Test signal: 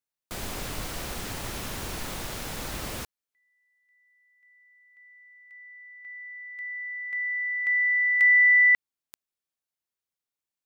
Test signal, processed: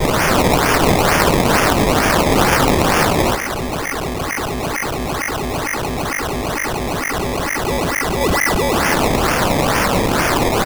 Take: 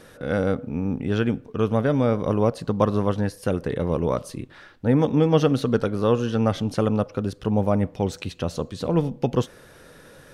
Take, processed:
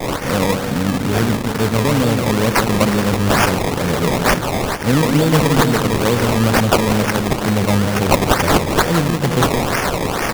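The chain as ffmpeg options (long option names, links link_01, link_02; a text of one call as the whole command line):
ffmpeg -i in.wav -filter_complex "[0:a]aeval=exprs='val(0)+0.5*0.0447*sgn(val(0))':channel_layout=same,asplit=2[link_01][link_02];[link_02]adelay=169,lowpass=frequency=4900:poles=1,volume=-6dB,asplit=2[link_03][link_04];[link_04]adelay=169,lowpass=frequency=4900:poles=1,volume=0.55,asplit=2[link_05][link_06];[link_06]adelay=169,lowpass=frequency=4900:poles=1,volume=0.55,asplit=2[link_07][link_08];[link_08]adelay=169,lowpass=frequency=4900:poles=1,volume=0.55,asplit=2[link_09][link_10];[link_10]adelay=169,lowpass=frequency=4900:poles=1,volume=0.55,asplit=2[link_11][link_12];[link_12]adelay=169,lowpass=frequency=4900:poles=1,volume=0.55,asplit=2[link_13][link_14];[link_14]adelay=169,lowpass=frequency=4900:poles=1,volume=0.55[link_15];[link_01][link_03][link_05][link_07][link_09][link_11][link_13][link_15]amix=inputs=8:normalize=0,aexciter=amount=6.7:drive=4.4:freq=3600,lowshelf=frequency=150:gain=7.5,agate=range=-33dB:threshold=-21dB:ratio=3:release=33:detection=peak,superequalizer=13b=2.51:14b=2.24,asplit=2[link_16][link_17];[link_17]acompressor=threshold=-17dB:ratio=6:attack=0.15:release=33:knee=6:detection=peak,volume=2dB[link_18];[link_16][link_18]amix=inputs=2:normalize=0,highpass=frequency=100:width=0.5412,highpass=frequency=100:width=1.3066,acrusher=samples=21:mix=1:aa=0.000001:lfo=1:lforange=21:lforate=2.2,volume=-3.5dB" out.wav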